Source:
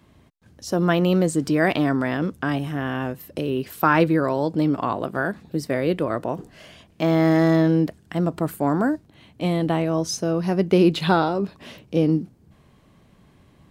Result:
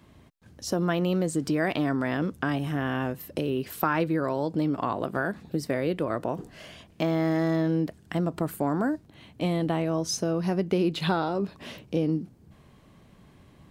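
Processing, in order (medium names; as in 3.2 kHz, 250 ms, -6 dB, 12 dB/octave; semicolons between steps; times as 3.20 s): compression 2.5:1, threshold -25 dBFS, peak gain reduction 9 dB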